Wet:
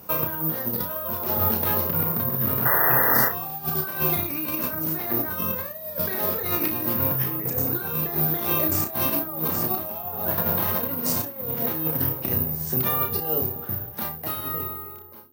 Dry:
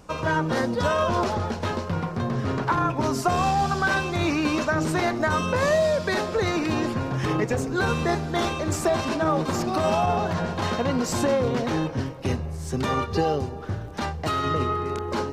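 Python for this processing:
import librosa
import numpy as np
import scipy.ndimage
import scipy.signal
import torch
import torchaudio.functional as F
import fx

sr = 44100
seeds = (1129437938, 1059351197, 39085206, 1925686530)

p1 = fx.fade_out_tail(x, sr, length_s=2.97)
p2 = scipy.signal.sosfilt(scipy.signal.butter(2, 90.0, 'highpass', fs=sr, output='sos'), p1)
p3 = fx.low_shelf(p2, sr, hz=340.0, db=2.5)
p4 = fx.hum_notches(p3, sr, base_hz=50, count=9)
p5 = fx.over_compress(p4, sr, threshold_db=-27.0, ratio=-0.5)
p6 = fx.spec_paint(p5, sr, seeds[0], shape='noise', start_s=2.65, length_s=0.64, low_hz=360.0, high_hz=2000.0, level_db=-22.0)
p7 = p6 + fx.room_early_taps(p6, sr, ms=(32, 60), db=(-5.5, -15.0), dry=0)
p8 = (np.kron(scipy.signal.resample_poly(p7, 1, 3), np.eye(3)[0]) * 3)[:len(p7)]
y = p8 * librosa.db_to_amplitude(-3.5)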